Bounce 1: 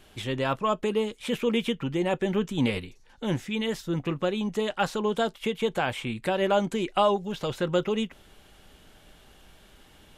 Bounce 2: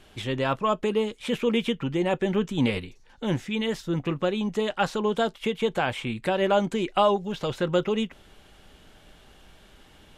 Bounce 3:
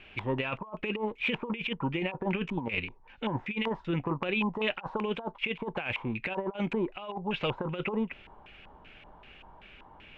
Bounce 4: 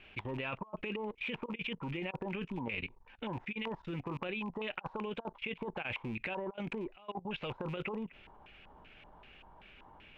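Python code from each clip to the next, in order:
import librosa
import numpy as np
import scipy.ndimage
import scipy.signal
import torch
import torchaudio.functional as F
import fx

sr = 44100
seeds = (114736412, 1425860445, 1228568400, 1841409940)

y1 = fx.high_shelf(x, sr, hz=11000.0, db=-9.5)
y1 = y1 * librosa.db_to_amplitude(1.5)
y2 = fx.filter_lfo_lowpass(y1, sr, shape='square', hz=2.6, low_hz=960.0, high_hz=2500.0, q=7.4)
y2 = fx.over_compress(y2, sr, threshold_db=-24.0, ratio=-0.5)
y2 = y2 * librosa.db_to_amplitude(-6.5)
y3 = fx.rattle_buzz(y2, sr, strikes_db=-34.0, level_db=-38.0)
y3 = fx.level_steps(y3, sr, step_db=19)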